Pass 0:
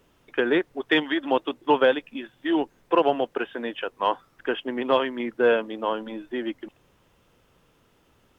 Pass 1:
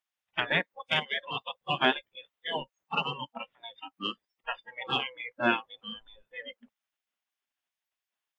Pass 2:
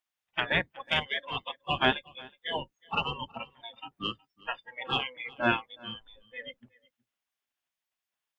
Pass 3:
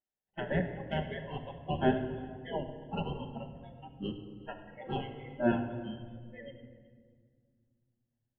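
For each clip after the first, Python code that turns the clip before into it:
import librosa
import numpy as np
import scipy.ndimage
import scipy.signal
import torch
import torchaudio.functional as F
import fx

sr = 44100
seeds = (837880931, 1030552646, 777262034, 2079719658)

y1 = fx.spec_gate(x, sr, threshold_db=-15, keep='weak')
y1 = fx.noise_reduce_blind(y1, sr, reduce_db=25)
y1 = y1 * librosa.db_to_amplitude(4.0)
y2 = fx.octave_divider(y1, sr, octaves=1, level_db=-5.0)
y2 = y2 + 10.0 ** (-23.5 / 20.0) * np.pad(y2, (int(368 * sr / 1000.0), 0))[:len(y2)]
y3 = scipy.signal.lfilter(np.full(37, 1.0 / 37), 1.0, y2)
y3 = fx.room_shoebox(y3, sr, seeds[0], volume_m3=2900.0, walls='mixed', distance_m=1.2)
y3 = y3 * librosa.db_to_amplitude(2.5)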